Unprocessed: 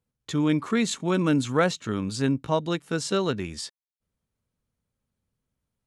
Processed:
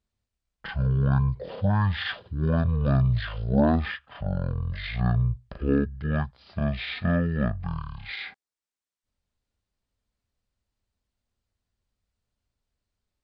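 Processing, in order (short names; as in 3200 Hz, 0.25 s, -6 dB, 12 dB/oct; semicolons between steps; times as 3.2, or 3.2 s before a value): dynamic EQ 6600 Hz, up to -5 dB, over -52 dBFS, Q 3.5; wide varispeed 0.443×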